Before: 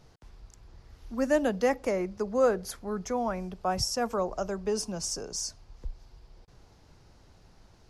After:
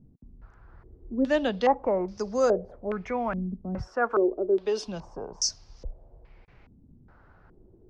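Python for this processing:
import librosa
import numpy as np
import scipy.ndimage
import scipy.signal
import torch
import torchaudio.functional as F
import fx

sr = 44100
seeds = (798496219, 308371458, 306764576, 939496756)

y = fx.low_shelf_res(x, sr, hz=220.0, db=-12.5, q=1.5, at=(3.87, 4.87))
y = fx.filter_held_lowpass(y, sr, hz=2.4, low_hz=240.0, high_hz=5600.0)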